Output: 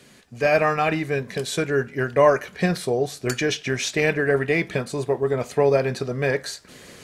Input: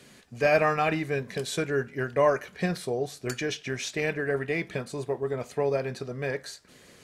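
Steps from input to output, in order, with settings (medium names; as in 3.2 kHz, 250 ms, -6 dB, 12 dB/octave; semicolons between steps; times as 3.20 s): gain riding within 4 dB 2 s; trim +5.5 dB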